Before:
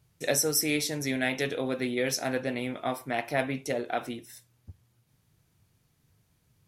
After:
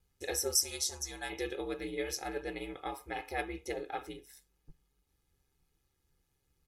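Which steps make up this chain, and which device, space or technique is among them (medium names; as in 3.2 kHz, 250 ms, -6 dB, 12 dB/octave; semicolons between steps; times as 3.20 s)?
0.55–1.30 s: FFT filter 110 Hz 0 dB, 350 Hz -14 dB, 1.1 kHz +7 dB, 2.1 kHz -10 dB, 6.5 kHz +11 dB, 14 kHz -1 dB; ring-modulated robot voice (ring modulator 69 Hz; comb 2.4 ms, depth 82%); trim -7 dB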